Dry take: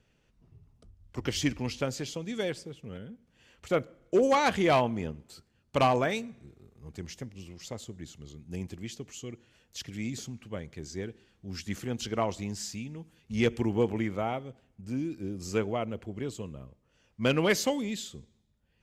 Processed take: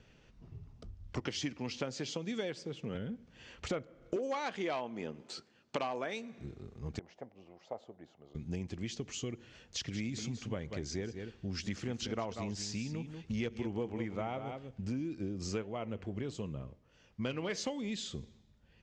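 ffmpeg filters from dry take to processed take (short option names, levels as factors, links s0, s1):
-filter_complex "[0:a]asettb=1/sr,asplit=3[s0][s1][s2];[s0]atrim=end=1.204[s3];[s1]atrim=start=1.2:end=2.95,asetpts=PTS-STARTPTS,afade=t=in:d=0.004:c=qsin,afade=t=out:st=1.746:d=0.004:c=qsin,highpass=140[s4];[s2]atrim=start=2.946[s5];[s3][s4]acrossfade=d=0.004:c1=hsin:c2=qsin[s6];[s6][s5]acrossfade=d=0.004:c1=qsin:c2=hsin,asettb=1/sr,asplit=3[s7][s8][s9];[s7]atrim=end=4.164[s10];[s8]atrim=start=4.16:end=6.39,asetpts=PTS-STARTPTS,afade=t=in:d=0.004:c=qsin,afade=t=out:st=2.226:d=0.004:c=qsin,highpass=250[s11];[s9]atrim=start=6.386[s12];[s10][s11]acrossfade=d=0.004:c1=hsin:c2=qsin[s13];[s13][s12]acrossfade=d=0.004:c1=qsin:c2=hsin,asettb=1/sr,asplit=3[s14][s15][s16];[s14]atrim=end=6.994[s17];[s15]atrim=start=6.99:end=8.35,asetpts=PTS-STARTPTS,afade=t=in:d=0.004:c=qsin,afade=t=out:st=1.356:d=0.004:c=qsin,bandpass=f=710:t=q:w=3.1[s18];[s16]atrim=start=8.346[s19];[s17][s18]acrossfade=d=0.004:c1=hsin:c2=qsin[s20];[s20][s19]acrossfade=d=0.004:c1=qsin:c2=hsin,asplit=3[s21][s22][s23];[s21]afade=t=out:st=9.84:d=0.02[s24];[s22]aecho=1:1:189:0.266,afade=t=in:st=9.84:d=0.02,afade=t=out:st=15:d=0.02[s25];[s23]afade=t=in:st=15:d=0.02[s26];[s24][s25][s26]amix=inputs=3:normalize=0,asplit=3[s27][s28][s29];[s27]afade=t=out:st=15.61:d=0.02[s30];[s28]flanger=delay=4.6:depth=7.2:regen=85:speed=1.4:shape=triangular,afade=t=in:st=15.61:d=0.02,afade=t=out:st=17.56:d=0.02[s31];[s29]afade=t=in:st=17.56:d=0.02[s32];[s30][s31][s32]amix=inputs=3:normalize=0,acompressor=threshold=0.00794:ratio=6,lowpass=f=6600:w=0.5412,lowpass=f=6600:w=1.3066,volume=2.24"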